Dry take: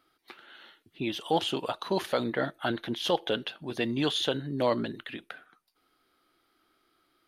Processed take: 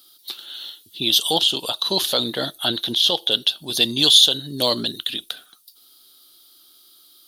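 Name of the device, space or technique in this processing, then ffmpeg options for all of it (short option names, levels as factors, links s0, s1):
over-bright horn tweeter: -filter_complex "[0:a]highshelf=f=2800:t=q:w=3:g=9,alimiter=limit=0.282:level=0:latency=1:release=431,asettb=1/sr,asplit=3[s0][s1][s2];[s0]atrim=end=1.334[s3];[s1]atrim=start=1.33:end=3.31,asetpts=PTS-STARTPTS,afade=t=in:d=0.004:c=qsin,afade=t=out:st=1.976:d=0.004:c=qsin,acrossover=split=3800[s4][s5];[s5]acompressor=threshold=0.0112:ratio=4:attack=1:release=60[s6];[s4][s6]amix=inputs=2:normalize=0[s7];[s2]atrim=start=3.306[s8];[s3][s7]acrossfade=d=0.004:c1=hsin:c2=qsin[s9];[s9][s8]acrossfade=d=0.004:c1=qsin:c2=hsin,aemphasis=mode=production:type=75fm,volume=1.58"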